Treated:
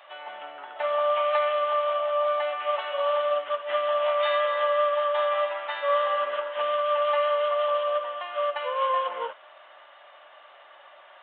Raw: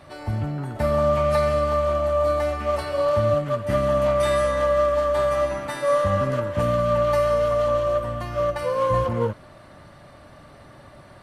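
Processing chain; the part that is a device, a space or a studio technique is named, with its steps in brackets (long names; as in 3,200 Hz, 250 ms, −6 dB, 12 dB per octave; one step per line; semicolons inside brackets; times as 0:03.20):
musical greeting card (downsampling to 8,000 Hz; high-pass filter 640 Hz 24 dB per octave; parametric band 3,000 Hz +7.5 dB 0.32 octaves)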